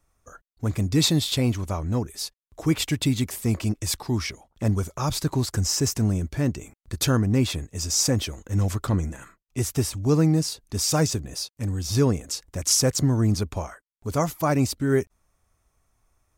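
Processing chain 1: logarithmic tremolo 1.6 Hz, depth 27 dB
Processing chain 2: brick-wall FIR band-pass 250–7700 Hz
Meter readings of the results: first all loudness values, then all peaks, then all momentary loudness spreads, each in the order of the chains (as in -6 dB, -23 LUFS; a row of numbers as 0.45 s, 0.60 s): -31.5 LUFS, -27.5 LUFS; -11.5 dBFS, -9.0 dBFS; 18 LU, 13 LU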